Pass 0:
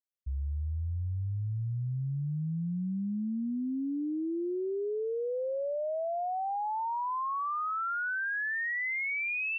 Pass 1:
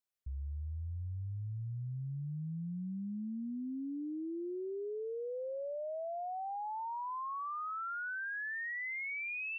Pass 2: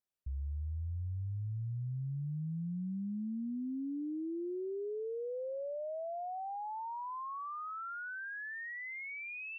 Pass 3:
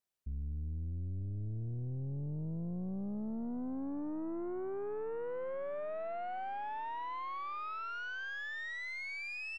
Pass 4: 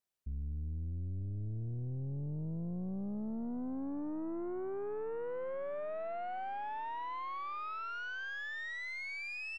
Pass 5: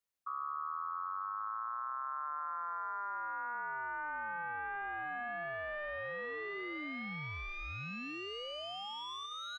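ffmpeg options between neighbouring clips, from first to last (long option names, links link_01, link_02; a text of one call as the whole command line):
ffmpeg -i in.wav -af "alimiter=level_in=13.5dB:limit=-24dB:level=0:latency=1:release=75,volume=-13.5dB,volume=1dB" out.wav
ffmpeg -i in.wav -af "tiltshelf=frequency=970:gain=3.5,volume=-1.5dB" out.wav
ffmpeg -i in.wav -filter_complex "[0:a]asplit=2[link_01][link_02];[link_02]adelay=915,lowpass=frequency=1100:poles=1,volume=-20dB,asplit=2[link_03][link_04];[link_04]adelay=915,lowpass=frequency=1100:poles=1,volume=0.52,asplit=2[link_05][link_06];[link_06]adelay=915,lowpass=frequency=1100:poles=1,volume=0.52,asplit=2[link_07][link_08];[link_08]adelay=915,lowpass=frequency=1100:poles=1,volume=0.52[link_09];[link_01][link_03][link_05][link_07][link_09]amix=inputs=5:normalize=0,aeval=exprs='(tanh(100*val(0)+0.5)-tanh(0.5))/100':channel_layout=same,volume=4dB" out.wav
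ffmpeg -i in.wav -af anull out.wav
ffmpeg -i in.wav -af "aeval=exprs='val(0)*sin(2*PI*1200*n/s)':channel_layout=same,volume=1.5dB" out.wav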